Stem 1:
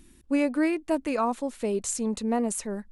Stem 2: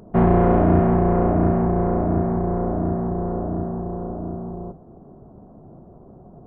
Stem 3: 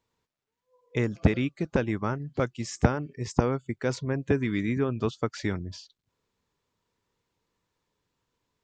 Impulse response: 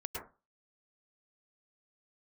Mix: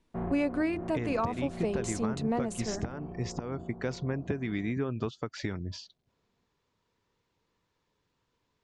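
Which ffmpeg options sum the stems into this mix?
-filter_complex "[0:a]bandreject=frequency=50:width_type=h:width=6,bandreject=frequency=100:width_type=h:width=6,bandreject=frequency=150:width_type=h:width=6,bandreject=frequency=200:width_type=h:width=6,bandreject=frequency=250:width_type=h:width=6,bandreject=frequency=300:width_type=h:width=6,bandreject=frequency=350:width_type=h:width=6,bandreject=frequency=400:width_type=h:width=6,agate=range=-17dB:threshold=-47dB:ratio=16:detection=peak,volume=-1.5dB,asplit=2[link_01][link_02];[1:a]agate=range=-19dB:threshold=-36dB:ratio=16:detection=peak,volume=-18.5dB[link_03];[2:a]acompressor=threshold=-31dB:ratio=4,volume=2dB[link_04];[link_02]apad=whole_len=284888[link_05];[link_03][link_05]sidechaincompress=threshold=-30dB:ratio=8:attack=44:release=432[link_06];[link_01][link_06][link_04]amix=inputs=3:normalize=0,lowpass=6000,alimiter=limit=-20dB:level=0:latency=1:release=211"

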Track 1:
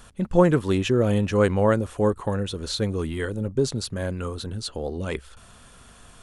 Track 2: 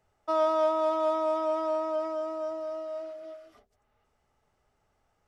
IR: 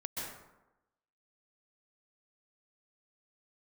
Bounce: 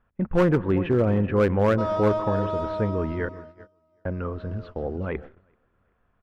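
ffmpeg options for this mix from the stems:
-filter_complex "[0:a]lowpass=frequency=2100:width=0.5412,lowpass=frequency=2100:width=1.3066,volume=-0.5dB,asplit=3[link_01][link_02][link_03];[link_01]atrim=end=3.29,asetpts=PTS-STARTPTS,afade=type=out:start_time=3.286:duration=0.004:curve=hsin[link_04];[link_02]atrim=start=3.29:end=4.05,asetpts=PTS-STARTPTS,volume=0[link_05];[link_03]atrim=start=4.05,asetpts=PTS-STARTPTS,afade=type=in:duration=0.004:curve=hsin[link_06];[link_04][link_05][link_06]concat=n=3:v=0:a=1,asplit=3[link_07][link_08][link_09];[link_08]volume=-20.5dB[link_10];[link_09]volume=-16.5dB[link_11];[1:a]adelay=1500,volume=7dB,afade=type=out:start_time=2.62:duration=0.68:silence=0.251189,afade=type=in:start_time=4.32:duration=0.48:silence=0.334965,asplit=2[link_12][link_13];[link_13]volume=-17.5dB[link_14];[2:a]atrim=start_sample=2205[link_15];[link_10][link_14]amix=inputs=2:normalize=0[link_16];[link_16][link_15]afir=irnorm=-1:irlink=0[link_17];[link_11]aecho=0:1:384|768|1152|1536|1920:1|0.38|0.144|0.0549|0.0209[link_18];[link_07][link_12][link_17][link_18]amix=inputs=4:normalize=0,lowpass=7100,agate=range=-19dB:threshold=-39dB:ratio=16:detection=peak,volume=14dB,asoftclip=hard,volume=-14dB"

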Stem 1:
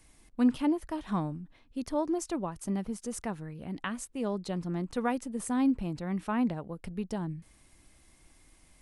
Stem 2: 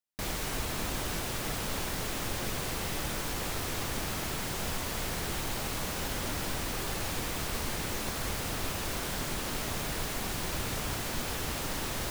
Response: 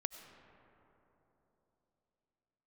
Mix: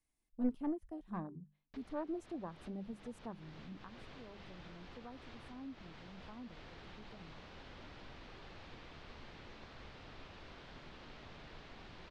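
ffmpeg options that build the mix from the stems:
-filter_complex "[0:a]afwtdn=0.0224,volume=-10dB,afade=type=out:start_time=3.67:duration=0.29:silence=0.251189,asplit=2[link_01][link_02];[1:a]lowpass=frequency=4200:width=0.5412,lowpass=frequency=4200:width=1.3066,adelay=1550,volume=-18dB[link_03];[link_02]apad=whole_len=602159[link_04];[link_03][link_04]sidechaincompress=threshold=-51dB:ratio=10:attack=7:release=210[link_05];[link_01][link_05]amix=inputs=2:normalize=0,bandreject=frequency=50:width_type=h:width=6,bandreject=frequency=100:width_type=h:width=6,bandreject=frequency=150:width_type=h:width=6,bandreject=frequency=200:width_type=h:width=6,aeval=exprs='0.0501*(cos(1*acos(clip(val(0)/0.0501,-1,1)))-cos(1*PI/2))+0.0158*(cos(2*acos(clip(val(0)/0.0501,-1,1)))-cos(2*PI/2))+0.000891*(cos(8*acos(clip(val(0)/0.0501,-1,1)))-cos(8*PI/2))':channel_layout=same"

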